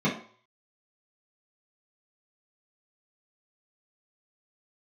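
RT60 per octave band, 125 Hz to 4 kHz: 0.40, 0.40, 0.45, 0.55, 0.45, 0.45 seconds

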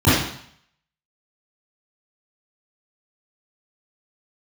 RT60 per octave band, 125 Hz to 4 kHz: 0.65, 0.60, 0.55, 0.65, 0.65, 0.65 seconds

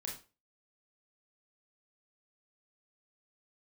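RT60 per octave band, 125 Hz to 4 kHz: 0.35, 0.35, 0.35, 0.30, 0.30, 0.30 seconds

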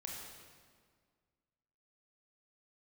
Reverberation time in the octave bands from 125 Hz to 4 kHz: 2.1, 2.1, 1.9, 1.8, 1.5, 1.4 seconds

